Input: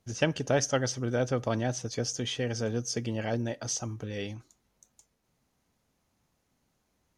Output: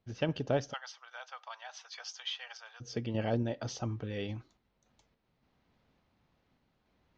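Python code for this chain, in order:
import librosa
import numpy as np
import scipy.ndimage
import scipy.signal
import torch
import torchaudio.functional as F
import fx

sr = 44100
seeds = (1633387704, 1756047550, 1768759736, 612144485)

y = fx.tremolo_random(x, sr, seeds[0], hz=3.5, depth_pct=55)
y = fx.dynamic_eq(y, sr, hz=1900.0, q=1.5, threshold_db=-50.0, ratio=4.0, max_db=-6)
y = scipy.signal.sosfilt(scipy.signal.butter(4, 4200.0, 'lowpass', fs=sr, output='sos'), y)
y = fx.rider(y, sr, range_db=4, speed_s=0.5)
y = fx.steep_highpass(y, sr, hz=860.0, slope=36, at=(0.72, 2.8), fade=0.02)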